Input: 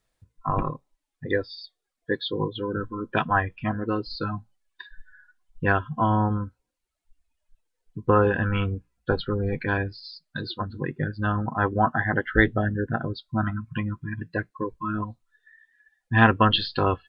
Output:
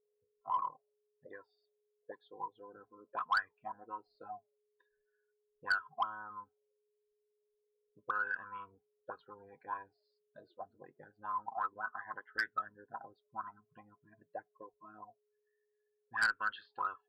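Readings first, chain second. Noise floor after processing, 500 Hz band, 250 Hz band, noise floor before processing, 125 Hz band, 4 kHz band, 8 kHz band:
-82 dBFS, -25.0 dB, -34.5 dB, -82 dBFS, under -40 dB, -19.5 dB, no reading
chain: auto-wah 470–1500 Hz, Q 18, up, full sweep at -17 dBFS; Chebyshev shaper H 2 -25 dB, 5 -8 dB, 7 -17 dB, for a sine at -17.5 dBFS; whistle 420 Hz -75 dBFS; trim -4.5 dB

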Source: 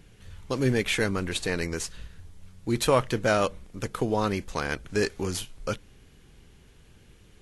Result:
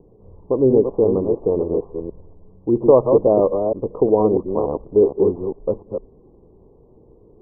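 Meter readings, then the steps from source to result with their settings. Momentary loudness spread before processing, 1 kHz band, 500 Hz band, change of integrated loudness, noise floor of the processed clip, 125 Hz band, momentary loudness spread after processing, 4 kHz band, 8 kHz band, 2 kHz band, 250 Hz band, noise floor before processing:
12 LU, +3.5 dB, +13.0 dB, +10.0 dB, -51 dBFS, +2.0 dB, 15 LU, under -40 dB, under -40 dB, under -40 dB, +9.0 dB, -55 dBFS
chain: chunks repeated in reverse 233 ms, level -5 dB; steep low-pass 1.1 kHz 96 dB/octave; peaking EQ 420 Hz +15 dB 1.6 oct; trim -1.5 dB

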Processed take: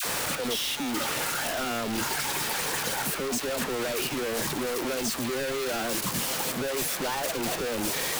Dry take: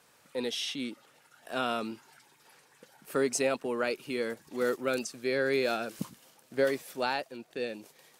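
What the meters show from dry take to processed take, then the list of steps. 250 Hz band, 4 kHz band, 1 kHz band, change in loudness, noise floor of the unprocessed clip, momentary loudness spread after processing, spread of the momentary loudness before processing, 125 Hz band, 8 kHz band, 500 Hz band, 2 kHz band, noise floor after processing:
+4.0 dB, +9.0 dB, +5.5 dB, +4.5 dB, -64 dBFS, 2 LU, 12 LU, +8.5 dB, +12.5 dB, 0.0 dB, +5.0 dB, -33 dBFS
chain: one-bit comparator; phase dispersion lows, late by 53 ms, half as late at 860 Hz; trim +4 dB

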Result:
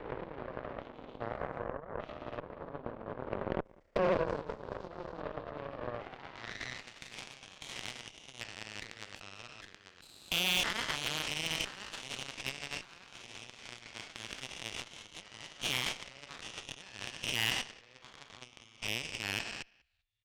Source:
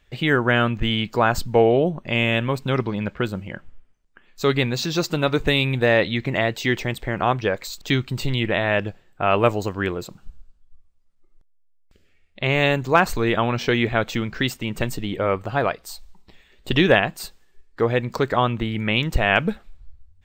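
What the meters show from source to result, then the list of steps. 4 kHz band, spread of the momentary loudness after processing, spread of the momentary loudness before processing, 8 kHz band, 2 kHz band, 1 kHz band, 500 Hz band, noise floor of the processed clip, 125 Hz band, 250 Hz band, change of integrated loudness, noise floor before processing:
-9.0 dB, 17 LU, 9 LU, -4.5 dB, -16.0 dB, -18.0 dB, -18.5 dB, -61 dBFS, -23.5 dB, -22.0 dB, -16.5 dB, -58 dBFS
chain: spectrogram pixelated in time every 400 ms; reverb removal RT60 0.58 s; in parallel at -4 dB: hard clipper -25.5 dBFS, distortion -7 dB; on the sum: peak limiter -17.5 dBFS, peak gain reduction 9 dB; frequency shift +21 Hz; ever faster or slower copies 232 ms, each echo +2 st, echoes 2; compressor with a negative ratio -36 dBFS, ratio -1; on a send: feedback delay 193 ms, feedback 18%, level -14.5 dB; on the sum: band-pass sweep 570 Hz -> 2.9 kHz, 5.93–6.90 s; Chebyshev shaper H 3 -33 dB, 4 -13 dB, 7 -19 dB, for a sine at -28 dBFS; trim +8 dB

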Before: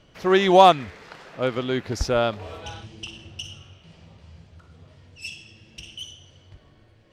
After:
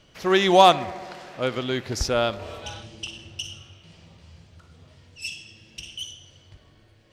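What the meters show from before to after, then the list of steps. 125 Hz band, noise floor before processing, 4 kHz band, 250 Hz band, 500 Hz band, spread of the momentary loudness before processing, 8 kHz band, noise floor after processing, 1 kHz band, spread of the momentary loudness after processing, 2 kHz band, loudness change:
-1.5 dB, -56 dBFS, +2.5 dB, -2.0 dB, -1.5 dB, 24 LU, +4.5 dB, -57 dBFS, -1.0 dB, 22 LU, +0.5 dB, -3.0 dB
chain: treble shelf 2.7 kHz +7.5 dB; on a send: filtered feedback delay 71 ms, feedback 82%, low-pass 2 kHz, level -19.5 dB; on the sum: trim -2 dB

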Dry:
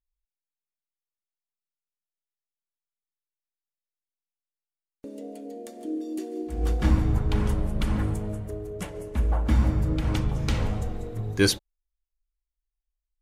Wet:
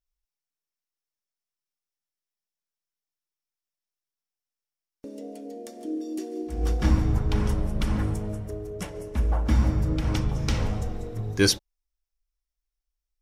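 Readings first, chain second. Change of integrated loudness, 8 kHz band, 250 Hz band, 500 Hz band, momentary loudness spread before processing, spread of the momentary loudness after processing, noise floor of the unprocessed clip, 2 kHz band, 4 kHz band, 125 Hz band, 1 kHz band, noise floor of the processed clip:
0.0 dB, +2.5 dB, 0.0 dB, 0.0 dB, 16 LU, 16 LU, under -85 dBFS, 0.0 dB, +2.0 dB, 0.0 dB, 0.0 dB, under -85 dBFS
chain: peaking EQ 5.5 kHz +8.5 dB 0.24 oct

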